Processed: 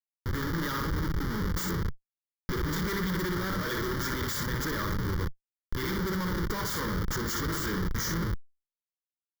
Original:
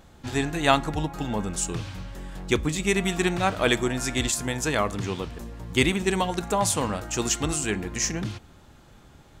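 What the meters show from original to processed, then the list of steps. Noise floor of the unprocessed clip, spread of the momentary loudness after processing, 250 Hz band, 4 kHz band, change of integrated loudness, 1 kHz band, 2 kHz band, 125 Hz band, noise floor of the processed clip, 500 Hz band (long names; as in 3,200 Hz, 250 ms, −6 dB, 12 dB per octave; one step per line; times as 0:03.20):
−52 dBFS, 5 LU, −5.0 dB, −7.5 dB, −5.5 dB, −7.5 dB, −5.5 dB, −1.5 dB, below −85 dBFS, −9.0 dB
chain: high-pass filter 80 Hz 12 dB per octave
parametric band 8,400 Hz +5.5 dB 1.3 octaves
mains-hum notches 50/100/150/200/250/300/350/400/450/500 Hz
on a send: flutter between parallel walls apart 10.2 metres, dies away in 0.47 s
on the sum: comparator with hysteresis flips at −28.5 dBFS
thirty-one-band graphic EQ 125 Hz −6 dB, 250 Hz −9 dB, 2,500 Hz −3 dB, 4,000 Hz −8 dB, 6,300 Hz −4 dB
reversed playback
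upward compression, threshold −29 dBFS
reversed playback
phaser with its sweep stopped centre 2,600 Hz, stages 6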